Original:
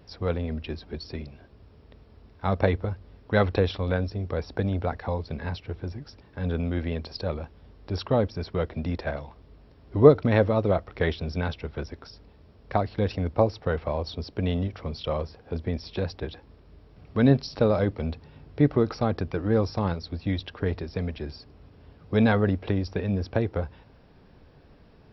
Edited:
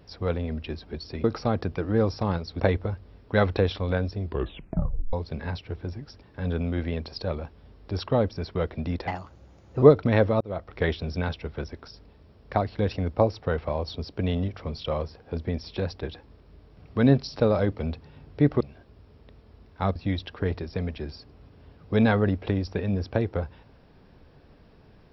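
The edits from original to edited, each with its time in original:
0:01.24–0:02.59: swap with 0:18.80–0:20.16
0:04.20: tape stop 0.92 s
0:09.06–0:10.02: play speed 127%
0:10.60–0:10.95: fade in

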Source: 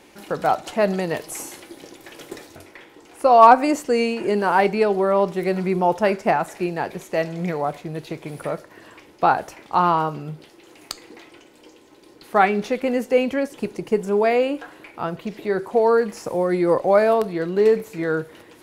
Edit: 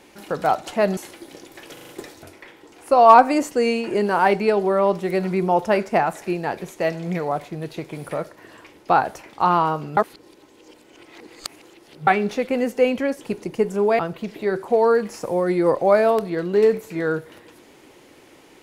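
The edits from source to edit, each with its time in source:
0:00.97–0:01.46: remove
0:02.22: stutter 0.04 s, 5 plays
0:10.30–0:12.40: reverse
0:14.32–0:15.02: remove

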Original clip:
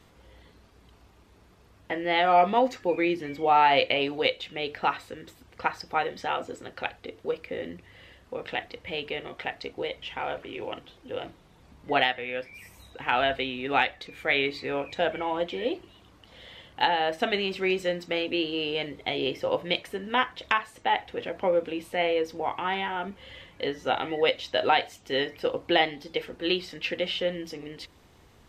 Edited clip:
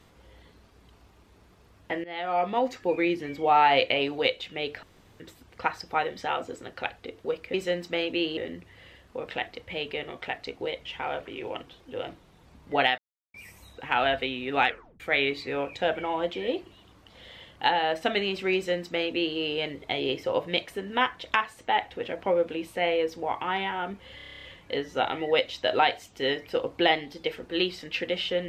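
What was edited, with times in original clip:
0:02.04–0:02.91: fade in, from −16.5 dB
0:04.83–0:05.20: fill with room tone
0:12.15–0:12.51: silence
0:13.84: tape stop 0.33 s
0:17.72–0:18.55: duplicate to 0:07.54
0:23.33: stutter 0.03 s, 10 plays

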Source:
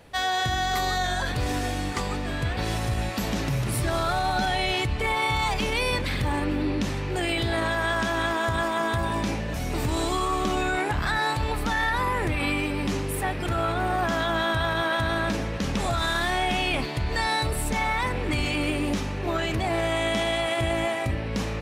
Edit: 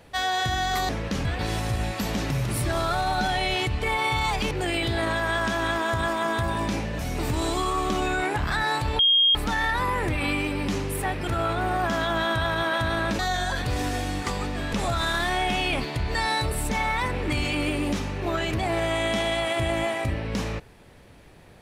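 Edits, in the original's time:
0:00.89–0:02.43: swap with 0:15.38–0:15.74
0:05.69–0:07.06: remove
0:11.54: insert tone 3,240 Hz −15.5 dBFS 0.36 s

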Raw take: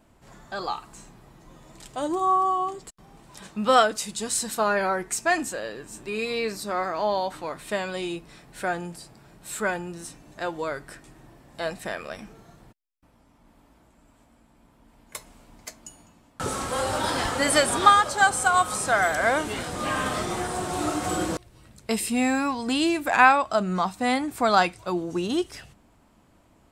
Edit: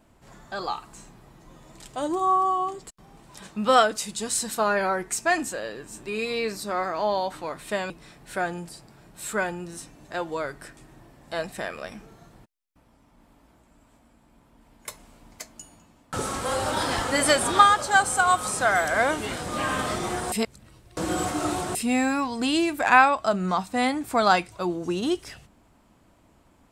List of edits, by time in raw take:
0:07.90–0:08.17: remove
0:20.59–0:22.02: reverse

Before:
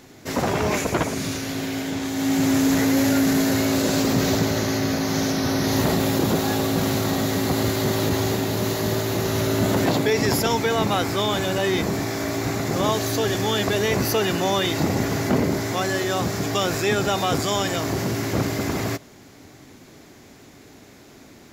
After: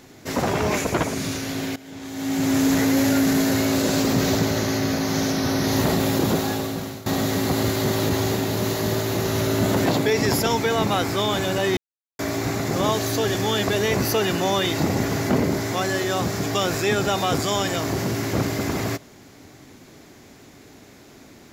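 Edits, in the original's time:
0:01.76–0:02.62: fade in, from −19.5 dB
0:06.33–0:07.06: fade out, to −19 dB
0:11.77–0:12.19: silence

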